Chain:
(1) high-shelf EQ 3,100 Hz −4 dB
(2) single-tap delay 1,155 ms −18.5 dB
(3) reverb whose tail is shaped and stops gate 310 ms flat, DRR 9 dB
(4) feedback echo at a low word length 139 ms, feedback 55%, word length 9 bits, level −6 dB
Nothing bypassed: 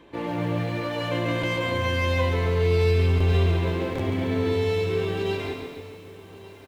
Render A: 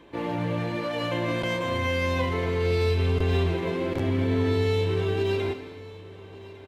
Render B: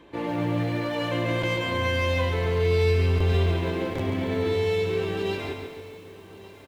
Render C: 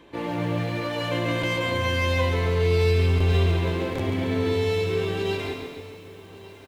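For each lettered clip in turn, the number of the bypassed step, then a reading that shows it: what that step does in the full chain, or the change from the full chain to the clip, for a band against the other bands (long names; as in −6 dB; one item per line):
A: 4, 125 Hz band −1.5 dB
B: 3, 125 Hz band −1.5 dB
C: 1, 4 kHz band +2.0 dB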